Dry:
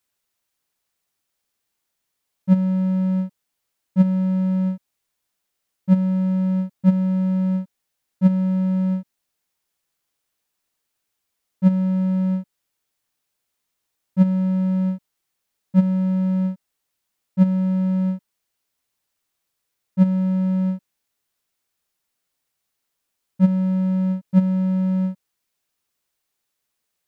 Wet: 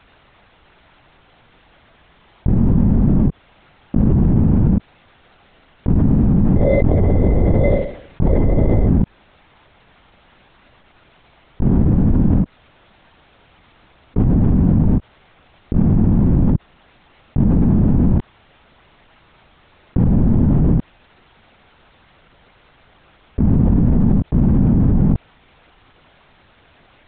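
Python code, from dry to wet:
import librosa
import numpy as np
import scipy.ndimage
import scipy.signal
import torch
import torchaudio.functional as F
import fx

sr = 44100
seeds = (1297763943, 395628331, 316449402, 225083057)

y = fx.high_shelf(x, sr, hz=2000.0, db=-11.0)
y = fx.room_flutter(y, sr, wall_m=4.0, rt60_s=0.57, at=(6.56, 8.86), fade=0.02)
y = fx.lpc_vocoder(y, sr, seeds[0], excitation='whisper', order=10)
y = fx.env_flatten(y, sr, amount_pct=100)
y = y * librosa.db_to_amplitude(-2.5)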